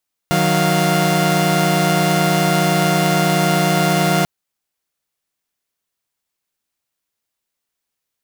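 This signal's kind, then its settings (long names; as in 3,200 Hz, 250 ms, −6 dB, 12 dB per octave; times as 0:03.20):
held notes D#3/F#3/F5 saw, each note −15.5 dBFS 3.94 s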